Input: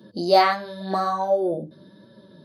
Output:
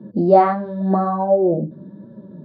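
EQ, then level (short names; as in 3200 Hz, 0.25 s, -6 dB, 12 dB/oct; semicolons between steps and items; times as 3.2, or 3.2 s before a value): LPF 1000 Hz 12 dB/oct; bell 190 Hz +9 dB 1.5 oct; +4.0 dB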